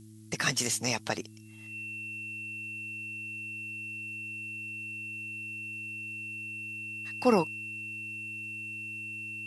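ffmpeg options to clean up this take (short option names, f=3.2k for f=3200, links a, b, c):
-af "adeclick=t=4,bandreject=f=108.4:t=h:w=4,bandreject=f=216.8:t=h:w=4,bandreject=f=325.2:t=h:w=4,bandreject=f=2.7k:w=30,afftdn=nr=30:nf=-43"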